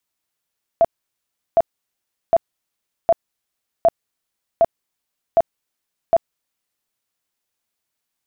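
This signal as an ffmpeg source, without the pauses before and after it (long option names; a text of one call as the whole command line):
ffmpeg -f lavfi -i "aevalsrc='0.355*sin(2*PI*670*mod(t,0.76))*lt(mod(t,0.76),24/670)':duration=6.08:sample_rate=44100" out.wav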